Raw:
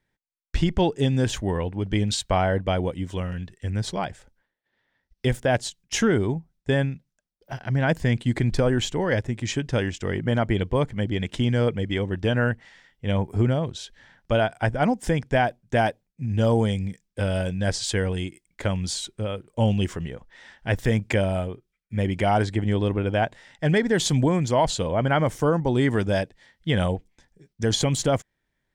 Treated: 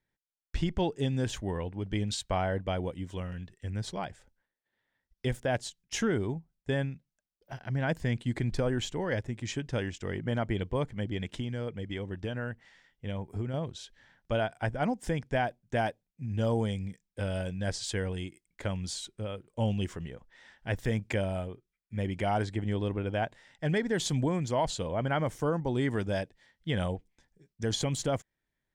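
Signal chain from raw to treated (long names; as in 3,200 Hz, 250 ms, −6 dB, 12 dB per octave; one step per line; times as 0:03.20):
0:11.34–0:13.54: downward compressor 2.5 to 1, threshold −25 dBFS, peak gain reduction 6.5 dB
level −8 dB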